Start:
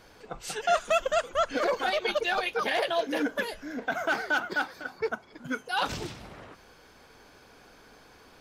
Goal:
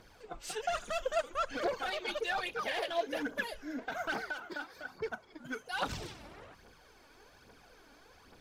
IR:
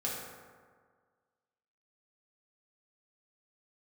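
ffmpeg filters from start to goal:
-filter_complex "[0:a]asoftclip=type=tanh:threshold=0.0794,asettb=1/sr,asplit=3[s0][s1][s2];[s0]atrim=end=4.264[s3];[s1]atrim=start=4.26:end=4.9,asetpts=PTS-STARTPTS,afade=t=in:d=0.004:c=qsin,afade=t=out:st=0.636:d=0.004:c=qsin,acompressor=threshold=0.0224:ratio=6[s4];[s2]atrim=start=4.896[s5];[s3][s4]acrossfade=d=0.004:c1=hsin:c2=qsin[s6];[s6][s5]acrossfade=d=0.004:c1=qsin:c2=hsin,aphaser=in_gain=1:out_gain=1:delay=3.6:decay=0.53:speed=1.2:type=triangular,volume=0.473"

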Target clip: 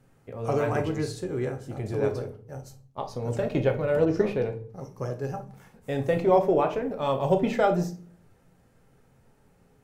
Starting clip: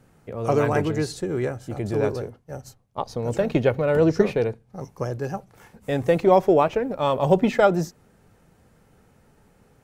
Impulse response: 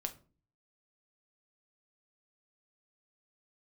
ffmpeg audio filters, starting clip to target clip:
-filter_complex "[1:a]atrim=start_sample=2205,asetrate=33957,aresample=44100[s0];[0:a][s0]afir=irnorm=-1:irlink=0,asettb=1/sr,asplit=3[s1][s2][s3];[s1]atrim=end=4.054[s4];[s2]atrim=start=4.05:end=6.69,asetpts=PTS-STARTPTS,afade=t=in:d=0.004:c=qsin,afade=t=out:st=2.636:d=0.004:c=qsin,adynamicequalizer=threshold=0.0158:dfrequency=3100:dqfactor=0.7:tfrequency=3100:tqfactor=0.7:attack=5:release=100:ratio=0.375:range=2.5:mode=cutabove:tftype=highshelf[s5];[s3]atrim=start=6.686[s6];[s4][s5]acrossfade=d=0.004:c1=hsin:c2=qsin[s7];[s7][s6]acrossfade=d=0.004:c1=qsin:c2=hsin,volume=0.531"

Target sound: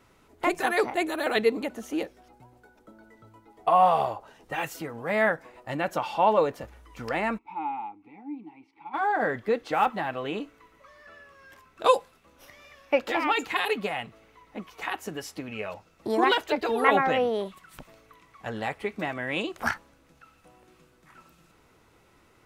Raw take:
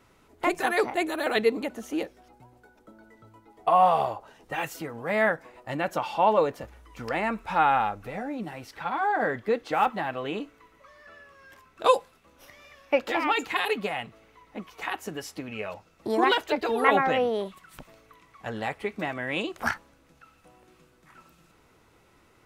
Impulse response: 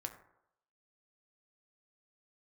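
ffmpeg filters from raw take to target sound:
-filter_complex "[0:a]asplit=3[s0][s1][s2];[s0]afade=t=out:st=7.37:d=0.02[s3];[s1]asplit=3[s4][s5][s6];[s4]bandpass=f=300:t=q:w=8,volume=1[s7];[s5]bandpass=f=870:t=q:w=8,volume=0.501[s8];[s6]bandpass=f=2240:t=q:w=8,volume=0.355[s9];[s7][s8][s9]amix=inputs=3:normalize=0,afade=t=in:st=7.37:d=0.02,afade=t=out:st=8.93:d=0.02[s10];[s2]afade=t=in:st=8.93:d=0.02[s11];[s3][s10][s11]amix=inputs=3:normalize=0"

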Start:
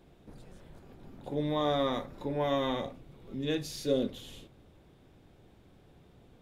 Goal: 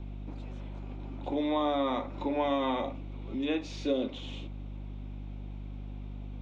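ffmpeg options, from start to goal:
-filter_complex "[0:a]highpass=f=230:w=0.5412,highpass=f=230:w=1.3066,equalizer=f=280:t=q:w=4:g=5,equalizer=f=450:t=q:w=4:g=-6,equalizer=f=910:t=q:w=4:g=3,equalizer=f=1700:t=q:w=4:g=-8,equalizer=f=2400:t=q:w=4:g=6,equalizer=f=4800:t=q:w=4:g=-8,lowpass=f=5500:w=0.5412,lowpass=f=5500:w=1.3066,aeval=exprs='val(0)+0.00562*(sin(2*PI*50*n/s)+sin(2*PI*2*50*n/s)/2+sin(2*PI*3*50*n/s)/3+sin(2*PI*4*50*n/s)/4+sin(2*PI*5*50*n/s)/5)':c=same,acrossover=split=410|2200[s0][s1][s2];[s0]acompressor=threshold=0.00891:ratio=4[s3];[s1]acompressor=threshold=0.0178:ratio=4[s4];[s2]acompressor=threshold=0.00251:ratio=4[s5];[s3][s4][s5]amix=inputs=3:normalize=0,volume=2.11"

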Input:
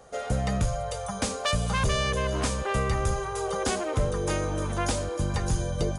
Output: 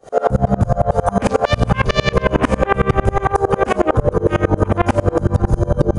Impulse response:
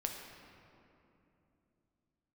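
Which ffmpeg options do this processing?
-filter_complex "[0:a]afwtdn=0.0158,equalizer=f=350:w=0.49:g=3,acompressor=threshold=0.0316:ratio=6,asoftclip=type=tanh:threshold=0.0891,asplit=2[s0][s1];[1:a]atrim=start_sample=2205,asetrate=27342,aresample=44100,adelay=9[s2];[s1][s2]afir=irnorm=-1:irlink=0,volume=0.211[s3];[s0][s3]amix=inputs=2:normalize=0,alimiter=level_in=50.1:limit=0.891:release=50:level=0:latency=1,aeval=exprs='val(0)*pow(10,-30*if(lt(mod(-11*n/s,1),2*abs(-11)/1000),1-mod(-11*n/s,1)/(2*abs(-11)/1000),(mod(-11*n/s,1)-2*abs(-11)/1000)/(1-2*abs(-11)/1000))/20)':c=same"

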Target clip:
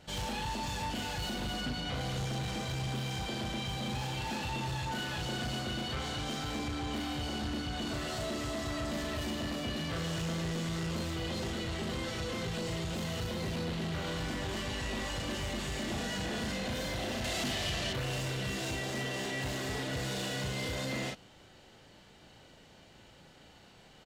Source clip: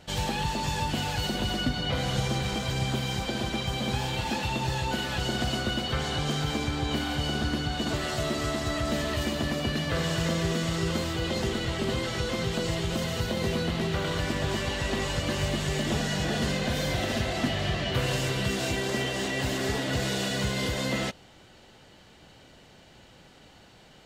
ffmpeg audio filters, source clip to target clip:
-filter_complex "[0:a]asplit=2[s0][s1];[s1]adelay=37,volume=0.631[s2];[s0][s2]amix=inputs=2:normalize=0,asoftclip=type=tanh:threshold=0.0501,asettb=1/sr,asplit=3[s3][s4][s5];[s3]atrim=end=17.244[s6];[s4]atrim=start=17.24:end=17.93,asetpts=PTS-STARTPTS,afade=t=in:d=0.004:c=qsin,afade=t=out:st=0.686:d=0.004:c=qsin,highshelf=f=3300:g=11[s7];[s5]atrim=start=17.926[s8];[s6][s7]acrossfade=d=0.004:c1=hsin:c2=qsin[s9];[s9][s8]acrossfade=d=0.004:c1=qsin:c2=hsin,volume=0.562"

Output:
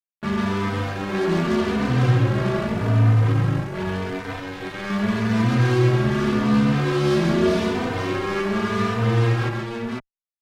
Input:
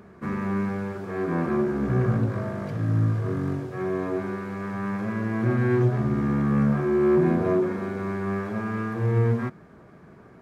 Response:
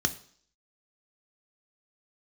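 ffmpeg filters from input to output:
-filter_complex "[0:a]asettb=1/sr,asplit=3[s0][s1][s2];[s0]atrim=end=3.324[s3];[s1]atrim=start=3.32:end=4.9,asetpts=PTS-STARTPTS,afade=t=in:d=0.004:c=qsin,afade=t=out:st=1.576:d=0.004:c=qsin,equalizer=f=250:t=o:w=1:g=-5,equalizer=f=500:t=o:w=1:g=-4,equalizer=f=1000:t=o:w=1:g=-7,equalizer=f=2000:t=o:w=1:g=4[s4];[s2]atrim=start=4.896[s5];[s3][s4]acrossfade=d=0.004:c1=hsin:c2=qsin[s6];[s6][s5]acrossfade=d=0.004:c1=qsin:c2=hsin,asplit=2[s7][s8];[s8]alimiter=limit=0.112:level=0:latency=1,volume=0.891[s9];[s7][s9]amix=inputs=2:normalize=0,acrusher=bits=3:mix=0:aa=0.5,aecho=1:1:135|499:0.562|0.668,asplit=2[s10][s11];[s11]adelay=3.2,afreqshift=0.84[s12];[s10][s12]amix=inputs=2:normalize=1"

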